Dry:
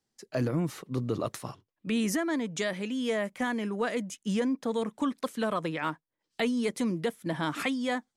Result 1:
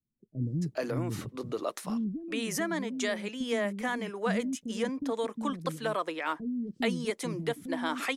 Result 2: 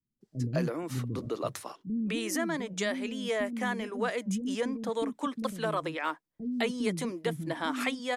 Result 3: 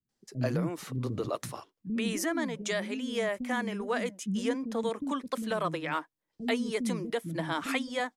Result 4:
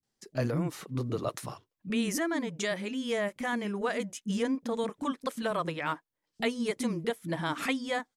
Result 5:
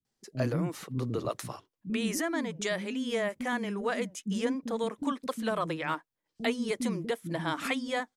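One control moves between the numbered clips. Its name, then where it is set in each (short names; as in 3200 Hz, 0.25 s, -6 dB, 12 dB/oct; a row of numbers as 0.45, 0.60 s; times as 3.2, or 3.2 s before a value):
bands offset in time, time: 430, 210, 90, 30, 50 ms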